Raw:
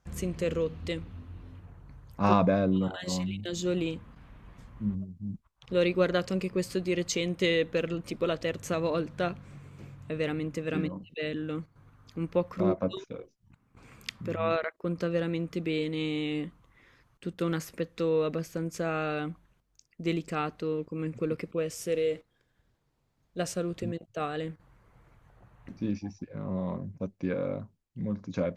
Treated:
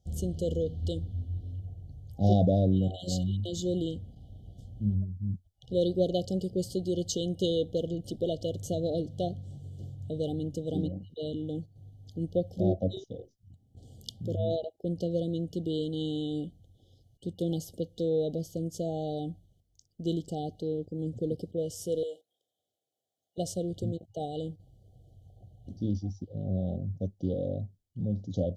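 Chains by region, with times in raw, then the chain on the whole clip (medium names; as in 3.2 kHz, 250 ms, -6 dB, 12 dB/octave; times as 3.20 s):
22.03–23.38 s: high-pass 690 Hz + peaking EQ 4.7 kHz -7 dB 0.7 oct
whole clip: FFT band-reject 800–2900 Hz; peaking EQ 91 Hz +13 dB 0.66 oct; trim -1.5 dB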